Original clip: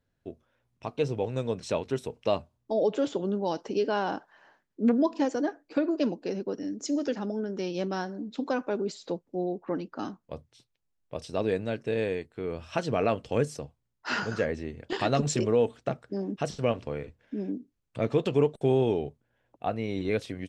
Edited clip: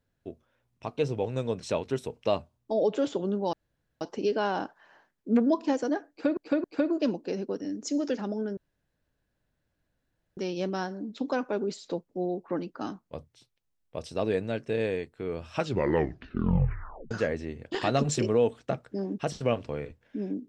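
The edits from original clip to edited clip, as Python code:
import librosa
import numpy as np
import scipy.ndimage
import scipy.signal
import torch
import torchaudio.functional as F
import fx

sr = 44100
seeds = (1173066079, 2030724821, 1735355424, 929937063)

y = fx.edit(x, sr, fx.insert_room_tone(at_s=3.53, length_s=0.48),
    fx.repeat(start_s=5.62, length_s=0.27, count=3),
    fx.insert_room_tone(at_s=7.55, length_s=1.8),
    fx.tape_stop(start_s=12.7, length_s=1.59), tone=tone)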